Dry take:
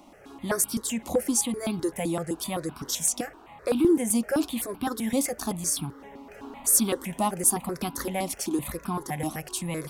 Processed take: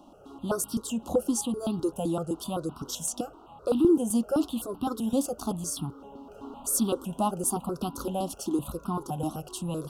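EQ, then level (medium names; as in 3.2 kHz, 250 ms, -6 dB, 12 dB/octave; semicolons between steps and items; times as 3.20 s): elliptic band-stop 1.4–2.8 kHz, stop band 40 dB; treble shelf 3.9 kHz -8 dB; 0.0 dB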